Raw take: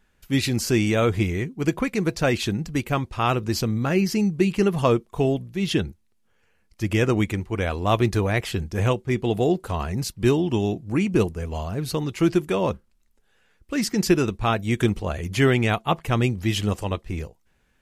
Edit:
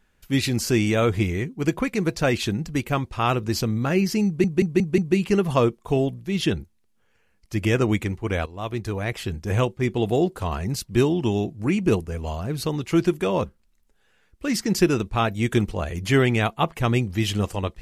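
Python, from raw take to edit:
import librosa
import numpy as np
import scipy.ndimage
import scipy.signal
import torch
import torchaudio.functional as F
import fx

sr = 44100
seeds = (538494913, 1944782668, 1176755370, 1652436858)

y = fx.edit(x, sr, fx.stutter(start_s=4.26, slice_s=0.18, count=5),
    fx.fade_in_from(start_s=7.74, length_s=1.14, floor_db=-15.0), tone=tone)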